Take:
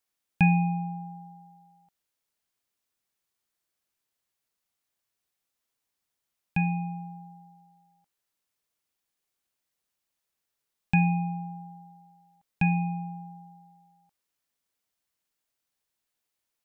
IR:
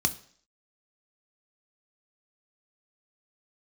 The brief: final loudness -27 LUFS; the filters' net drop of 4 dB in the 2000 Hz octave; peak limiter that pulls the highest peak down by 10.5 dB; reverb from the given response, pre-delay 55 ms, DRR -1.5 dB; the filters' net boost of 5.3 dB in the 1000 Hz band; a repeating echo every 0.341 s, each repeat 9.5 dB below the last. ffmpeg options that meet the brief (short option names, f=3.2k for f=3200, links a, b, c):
-filter_complex "[0:a]equalizer=f=1k:t=o:g=8.5,equalizer=f=2k:t=o:g=-7,alimiter=limit=-20.5dB:level=0:latency=1,aecho=1:1:341|682|1023|1364:0.335|0.111|0.0365|0.012,asplit=2[a][b];[1:a]atrim=start_sample=2205,adelay=55[c];[b][c]afir=irnorm=-1:irlink=0,volume=-6.5dB[d];[a][d]amix=inputs=2:normalize=0,volume=-3.5dB"